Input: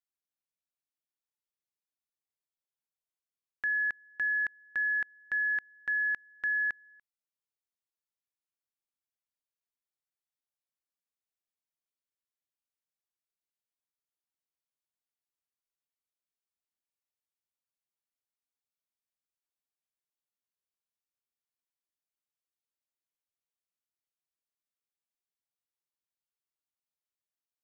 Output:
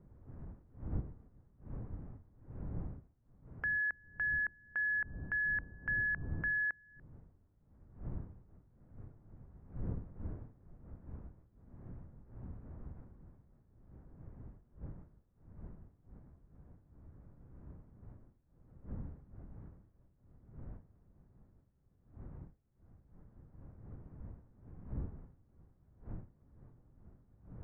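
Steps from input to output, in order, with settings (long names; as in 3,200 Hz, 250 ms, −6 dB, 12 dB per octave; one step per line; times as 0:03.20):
wind on the microphone 120 Hz −46 dBFS
low-pass filter 1,800 Hz 24 dB per octave
one half of a high-frequency compander encoder only
level −2.5 dB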